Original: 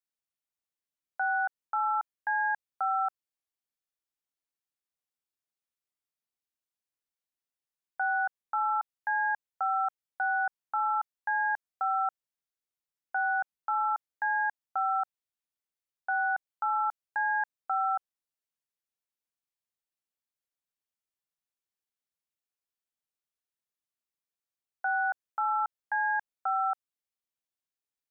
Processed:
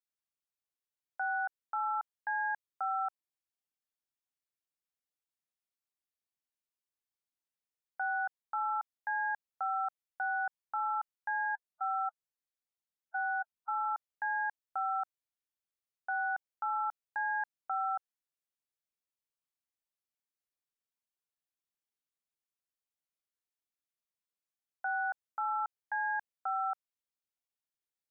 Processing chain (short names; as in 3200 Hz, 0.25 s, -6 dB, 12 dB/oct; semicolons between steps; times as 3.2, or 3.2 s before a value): 11.45–13.86 spectral gate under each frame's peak -10 dB strong; gain -5 dB